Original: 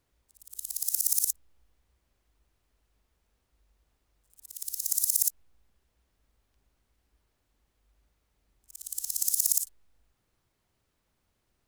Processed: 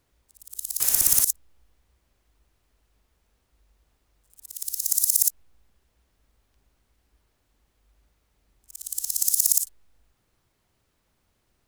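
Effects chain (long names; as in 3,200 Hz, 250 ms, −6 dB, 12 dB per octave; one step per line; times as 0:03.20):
0:00.80–0:01.24: converter with a step at zero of −27.5 dBFS
level +5 dB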